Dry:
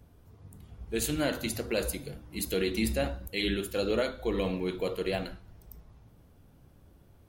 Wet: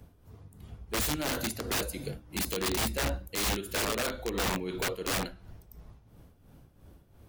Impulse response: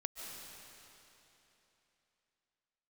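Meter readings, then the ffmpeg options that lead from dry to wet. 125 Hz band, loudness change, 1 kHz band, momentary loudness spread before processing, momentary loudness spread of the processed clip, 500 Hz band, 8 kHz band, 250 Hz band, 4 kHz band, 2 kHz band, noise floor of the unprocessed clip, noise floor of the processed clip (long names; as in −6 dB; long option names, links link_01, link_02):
0.0 dB, 0.0 dB, +5.5 dB, 11 LU, 8 LU, −4.5 dB, +5.0 dB, −3.5 dB, +3.0 dB, +2.5 dB, −59 dBFS, −60 dBFS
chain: -filter_complex "[0:a]tremolo=f=2.9:d=0.67,acrossover=split=130[link_01][link_02];[link_02]aeval=exprs='(mod(28.2*val(0)+1,2)-1)/28.2':channel_layout=same[link_03];[link_01][link_03]amix=inputs=2:normalize=0,volume=4.5dB"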